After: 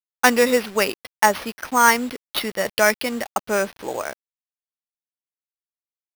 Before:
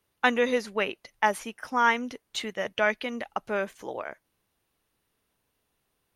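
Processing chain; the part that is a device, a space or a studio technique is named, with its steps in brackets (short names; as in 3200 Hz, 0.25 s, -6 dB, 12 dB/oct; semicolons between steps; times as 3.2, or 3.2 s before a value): early 8-bit sampler (sample-rate reducer 7500 Hz, jitter 0%; bit-crush 8-bit); gain +7.5 dB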